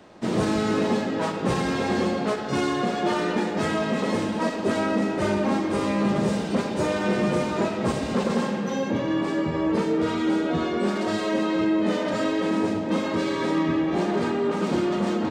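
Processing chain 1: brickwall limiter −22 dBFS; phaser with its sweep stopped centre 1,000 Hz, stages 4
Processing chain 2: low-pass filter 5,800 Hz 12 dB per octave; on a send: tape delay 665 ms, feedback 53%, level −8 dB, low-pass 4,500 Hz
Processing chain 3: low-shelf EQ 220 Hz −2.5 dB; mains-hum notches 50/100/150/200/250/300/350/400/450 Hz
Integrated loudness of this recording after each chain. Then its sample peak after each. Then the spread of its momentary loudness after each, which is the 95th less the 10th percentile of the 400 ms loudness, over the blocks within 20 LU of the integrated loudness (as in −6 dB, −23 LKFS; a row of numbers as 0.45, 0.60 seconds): −35.0, −24.0, −26.0 LKFS; −23.0, −11.0, −13.0 dBFS; 2, 2, 3 LU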